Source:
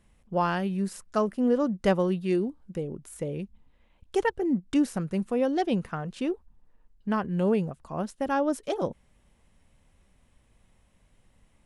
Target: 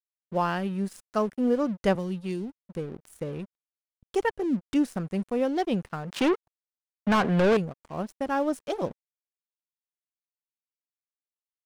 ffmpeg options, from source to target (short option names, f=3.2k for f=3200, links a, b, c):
-filter_complex "[0:a]aeval=exprs='sgn(val(0))*max(abs(val(0))-0.00501,0)':c=same,asettb=1/sr,asplit=3[a][b][c];[a]atrim=end=1.954[d];[b]atrim=start=1.95:end=2.62,asetpts=PTS-STARTPTS,afade=t=in:d=0.004:c=qsin,afade=t=out:st=0.666:d=0.004:c=qsin,acrossover=split=210|3000[e][f][g];[f]acompressor=threshold=-36dB:ratio=4[h];[e][h][g]amix=inputs=3:normalize=0[i];[c]atrim=start=2.616[j];[d][i]acrossfade=d=0.004:c1=hsin:c2=qsin[k];[k][j]acrossfade=d=0.004:c1=qsin:c2=hsin,asettb=1/sr,asplit=3[l][m][n];[l]atrim=end=6.124[o];[m]atrim=start=6.12:end=7.57,asetpts=PTS-STARTPTS,afade=t=in:d=0.004:c=qsin,afade=t=out:st=1.446:d=0.004:c=qsin,asplit=2[p][q];[q]highpass=f=720:p=1,volume=28dB,asoftclip=type=tanh:threshold=-14.5dB[r];[p][r]amix=inputs=2:normalize=0,lowpass=f=3.5k:p=1,volume=-6dB[s];[n]atrim=start=7.566[t];[o][s]acrossfade=d=0.004:c1=hsin:c2=qsin[u];[u][t]acrossfade=d=0.004:c1=qsin:c2=hsin"